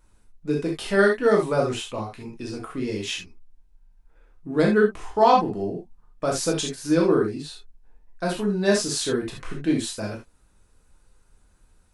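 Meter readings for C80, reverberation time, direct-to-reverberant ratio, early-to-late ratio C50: 14.0 dB, not exponential, -2.0 dB, 6.0 dB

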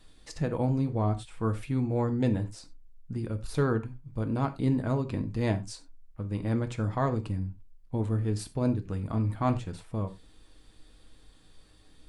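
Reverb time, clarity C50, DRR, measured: not exponential, 15.0 dB, 6.5 dB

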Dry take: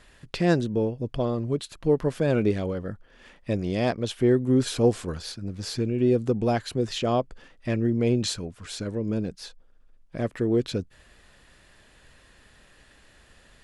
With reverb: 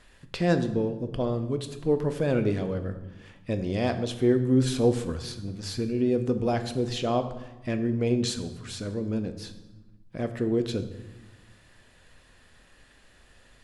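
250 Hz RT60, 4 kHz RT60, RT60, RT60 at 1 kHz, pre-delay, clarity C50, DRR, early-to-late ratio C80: 1.6 s, 0.80 s, 1.1 s, 1.1 s, 4 ms, 11.5 dB, 8.0 dB, 13.0 dB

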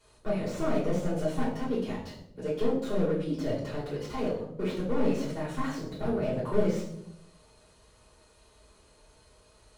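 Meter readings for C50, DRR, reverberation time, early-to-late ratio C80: 5.0 dB, -8.5 dB, 0.75 s, 9.0 dB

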